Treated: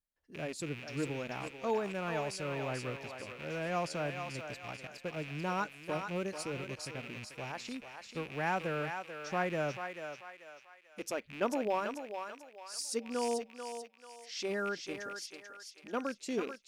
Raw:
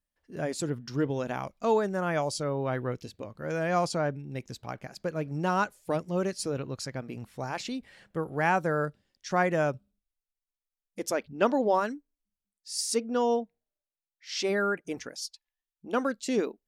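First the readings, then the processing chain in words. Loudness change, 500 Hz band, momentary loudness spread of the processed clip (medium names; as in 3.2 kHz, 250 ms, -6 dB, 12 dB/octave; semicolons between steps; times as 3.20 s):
-7.5 dB, -7.5 dB, 11 LU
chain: rattle on loud lows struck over -44 dBFS, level -27 dBFS; short-mantissa float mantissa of 6-bit; on a send: thinning echo 439 ms, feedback 44%, high-pass 600 Hz, level -5.5 dB; on the sum: trim -8 dB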